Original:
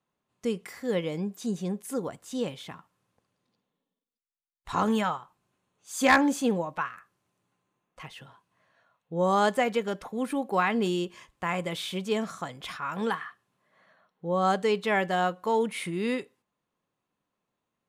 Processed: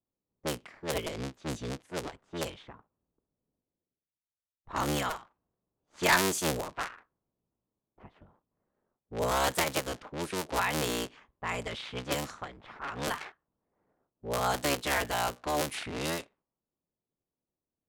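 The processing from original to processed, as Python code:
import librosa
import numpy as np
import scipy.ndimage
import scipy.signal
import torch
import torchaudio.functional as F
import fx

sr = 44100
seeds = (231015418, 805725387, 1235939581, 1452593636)

y = fx.cycle_switch(x, sr, every=3, mode='inverted')
y = fx.env_lowpass(y, sr, base_hz=500.0, full_db=-24.0)
y = fx.high_shelf(y, sr, hz=3200.0, db=11.5)
y = y * 10.0 ** (-6.0 / 20.0)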